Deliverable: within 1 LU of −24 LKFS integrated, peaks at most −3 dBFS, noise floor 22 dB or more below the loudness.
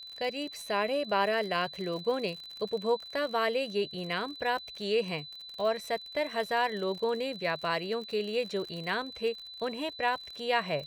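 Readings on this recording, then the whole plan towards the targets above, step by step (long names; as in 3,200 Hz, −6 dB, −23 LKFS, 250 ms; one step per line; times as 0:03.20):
crackle rate 51 per second; interfering tone 4,000 Hz; level of the tone −43 dBFS; integrated loudness −31.5 LKFS; sample peak −14.0 dBFS; target loudness −24.0 LKFS
→ click removal
notch filter 4,000 Hz, Q 30
level +7.5 dB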